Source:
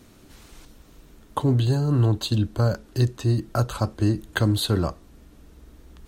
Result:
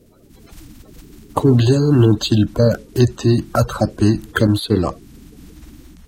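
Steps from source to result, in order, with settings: bin magnitudes rounded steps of 30 dB; 4.47–4.87 expander -19 dBFS; AGC gain up to 8 dB; gain +1 dB

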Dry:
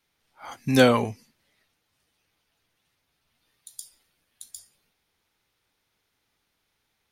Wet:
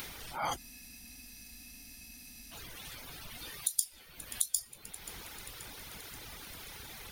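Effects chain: octaver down 2 oct, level +1 dB; upward compressor, threshold -29 dBFS; dynamic EQ 1600 Hz, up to -5 dB, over -51 dBFS, Q 2; reverb removal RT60 1.1 s; high shelf 12000 Hz +8.5 dB; thin delay 0.531 s, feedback 61%, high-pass 2300 Hz, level -16 dB; spectral freeze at 0.6, 1.93 s; gain +4 dB

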